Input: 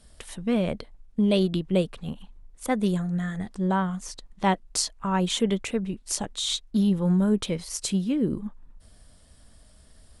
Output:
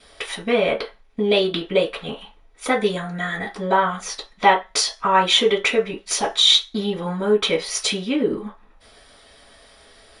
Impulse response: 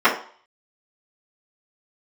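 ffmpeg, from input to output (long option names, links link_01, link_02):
-filter_complex "[0:a]acompressor=threshold=-25dB:ratio=2.5[link_01];[1:a]atrim=start_sample=2205,asetrate=79380,aresample=44100[link_02];[link_01][link_02]afir=irnorm=-1:irlink=0,volume=-3dB"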